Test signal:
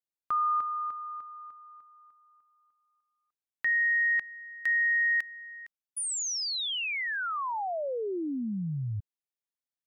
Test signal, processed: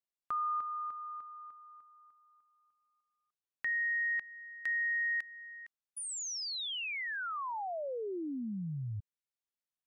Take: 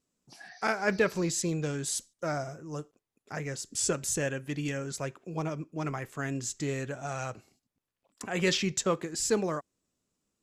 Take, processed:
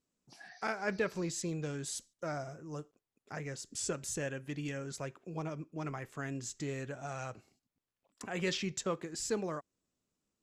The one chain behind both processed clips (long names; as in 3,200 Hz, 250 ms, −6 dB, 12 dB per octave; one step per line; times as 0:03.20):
high-shelf EQ 10,000 Hz −7.5 dB
in parallel at −3 dB: downward compressor, threshold −36 dBFS
on the sum: level −8.5 dB